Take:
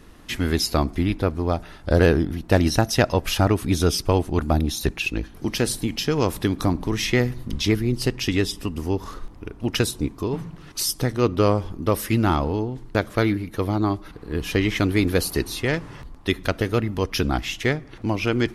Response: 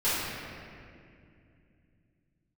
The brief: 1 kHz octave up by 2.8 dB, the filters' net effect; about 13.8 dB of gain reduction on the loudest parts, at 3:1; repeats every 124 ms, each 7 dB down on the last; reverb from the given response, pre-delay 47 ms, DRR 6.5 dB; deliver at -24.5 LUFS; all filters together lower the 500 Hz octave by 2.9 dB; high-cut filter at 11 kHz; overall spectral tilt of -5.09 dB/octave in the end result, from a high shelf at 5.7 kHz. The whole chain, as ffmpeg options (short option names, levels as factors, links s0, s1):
-filter_complex "[0:a]lowpass=11000,equalizer=f=500:t=o:g=-5,equalizer=f=1000:t=o:g=5.5,highshelf=f=5700:g=-4,acompressor=threshold=0.0251:ratio=3,aecho=1:1:124|248|372|496|620:0.447|0.201|0.0905|0.0407|0.0183,asplit=2[s0][s1];[1:a]atrim=start_sample=2205,adelay=47[s2];[s1][s2]afir=irnorm=-1:irlink=0,volume=0.106[s3];[s0][s3]amix=inputs=2:normalize=0,volume=2.51"